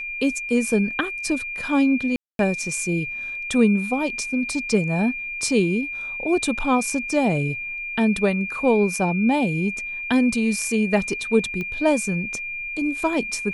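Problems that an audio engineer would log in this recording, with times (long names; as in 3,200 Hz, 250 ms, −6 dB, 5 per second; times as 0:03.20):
whistle 2,400 Hz −28 dBFS
0:02.16–0:02.39: drop-out 232 ms
0:11.61: click −18 dBFS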